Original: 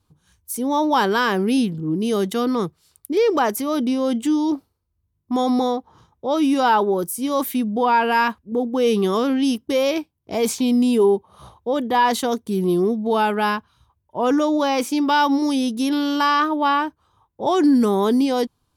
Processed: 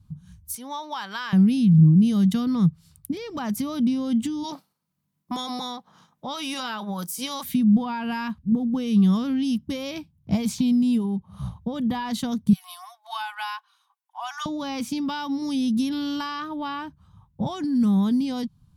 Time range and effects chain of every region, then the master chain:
0.55–1.33 s: high-pass 880 Hz + treble shelf 6.9 kHz -9 dB
4.43–7.43 s: spectral peaks clipped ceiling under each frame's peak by 13 dB + high-pass 440 Hz
12.53–14.46 s: steep high-pass 750 Hz 96 dB/octave + comb 2.7 ms, depth 51%
whole clip: dynamic bell 4.1 kHz, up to +5 dB, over -41 dBFS, Q 1.1; compression 6:1, threshold -26 dBFS; resonant low shelf 260 Hz +14 dB, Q 3; trim -2 dB

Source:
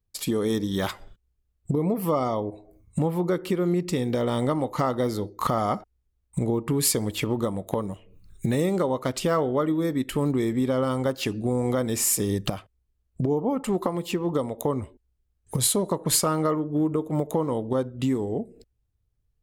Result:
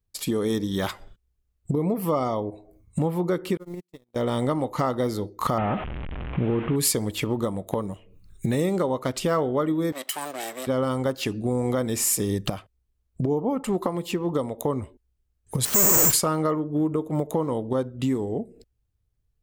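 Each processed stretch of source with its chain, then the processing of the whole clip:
3.57–4.16 s: zero-crossing glitches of -30.5 dBFS + high-pass 46 Hz + gate -21 dBFS, range -51 dB
5.58–6.76 s: one-bit delta coder 16 kbps, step -36.5 dBFS + level flattener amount 50%
9.92–10.67 s: comb filter that takes the minimum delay 1 ms + high-pass 410 Hz + tilt EQ +3 dB/octave
15.65–16.13 s: one-bit comparator + low-pass 2.8 kHz + careless resampling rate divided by 6×, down filtered, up zero stuff
whole clip: none

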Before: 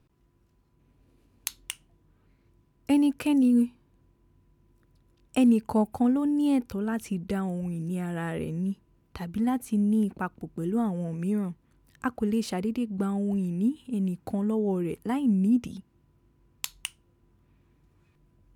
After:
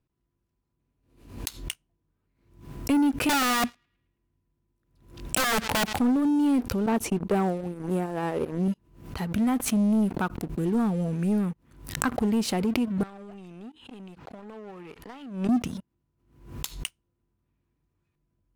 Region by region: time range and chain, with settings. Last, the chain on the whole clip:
3.29–6.00 s: integer overflow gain 22 dB + band-passed feedback delay 108 ms, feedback 52%, band-pass 2.3 kHz, level -23 dB
6.86–8.68 s: gate -31 dBFS, range -17 dB + high-order bell 560 Hz +8.5 dB 2.3 oct
13.03–15.49 s: three-band isolator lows -12 dB, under 500 Hz, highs -19 dB, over 5.3 kHz + compression 4:1, threshold -43 dBFS
whole clip: waveshaping leveller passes 3; swell ahead of each attack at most 95 dB/s; trim -7 dB

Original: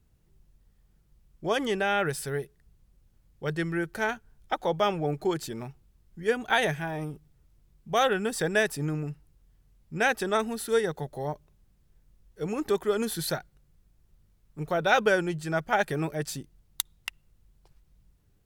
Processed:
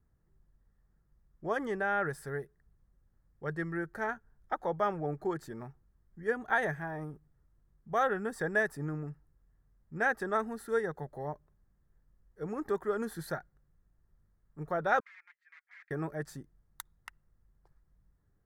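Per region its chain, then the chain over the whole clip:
15.00–15.91 s: integer overflow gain 23.5 dB + ladder high-pass 2 kHz, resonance 70% + tape spacing loss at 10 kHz 34 dB
whole clip: resonant high shelf 2.1 kHz -8.5 dB, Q 3; band-stop 1.5 kHz, Q 12; trim -6.5 dB

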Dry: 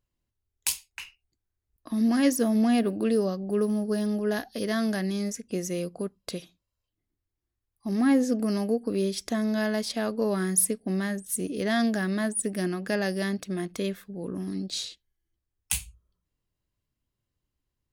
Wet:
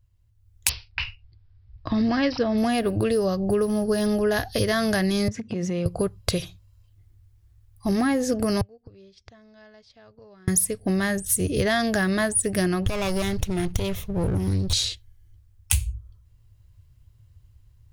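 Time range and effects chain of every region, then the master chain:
0.69–2.58 s: low-pass 5.3 kHz + careless resampling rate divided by 4×, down none, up filtered
5.28–5.86 s: peaking EQ 220 Hz +13.5 dB 0.53 oct + compression 12:1, threshold -32 dBFS + band-pass 160–3600 Hz
8.61–10.48 s: low-pass 5.5 kHz 24 dB/octave + inverted gate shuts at -26 dBFS, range -34 dB
12.86–14.73 s: comb filter that takes the minimum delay 0.31 ms + compression 10:1, threshold -31 dBFS
whole clip: level rider gain up to 10 dB; resonant low shelf 150 Hz +13.5 dB, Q 3; compression, threshold -23 dBFS; trim +3.5 dB

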